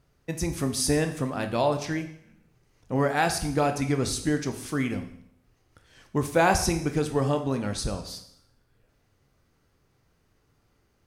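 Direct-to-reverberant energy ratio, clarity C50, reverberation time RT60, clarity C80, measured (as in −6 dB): 6.0 dB, 10.5 dB, 0.70 s, 13.5 dB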